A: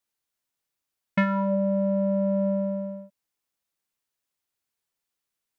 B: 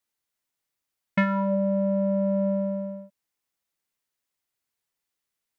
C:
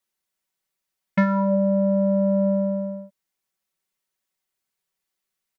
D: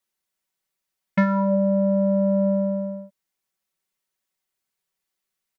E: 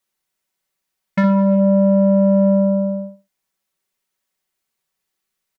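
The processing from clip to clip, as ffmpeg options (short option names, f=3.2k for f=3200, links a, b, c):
-af "equalizer=f=2k:t=o:w=0.21:g=3"
-af "aecho=1:1:5.3:0.63"
-af anull
-filter_complex "[0:a]asplit=2[a][b];[b]asoftclip=type=tanh:threshold=-22dB,volume=-5dB[c];[a][c]amix=inputs=2:normalize=0,asplit=2[d][e];[e]adelay=61,lowpass=f=2.8k:p=1,volume=-5dB,asplit=2[f][g];[g]adelay=61,lowpass=f=2.8k:p=1,volume=0.25,asplit=2[h][i];[i]adelay=61,lowpass=f=2.8k:p=1,volume=0.25[j];[d][f][h][j]amix=inputs=4:normalize=0"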